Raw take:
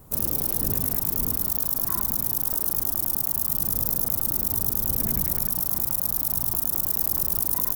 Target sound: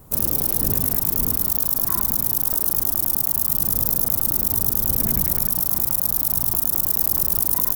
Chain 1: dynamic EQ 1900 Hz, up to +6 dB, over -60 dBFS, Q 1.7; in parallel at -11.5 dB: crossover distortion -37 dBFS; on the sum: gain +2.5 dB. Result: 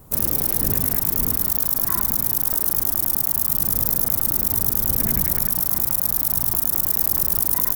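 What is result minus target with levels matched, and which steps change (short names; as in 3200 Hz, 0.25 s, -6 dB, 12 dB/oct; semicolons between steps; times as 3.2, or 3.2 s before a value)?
2000 Hz band +4.5 dB
remove: dynamic EQ 1900 Hz, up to +6 dB, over -60 dBFS, Q 1.7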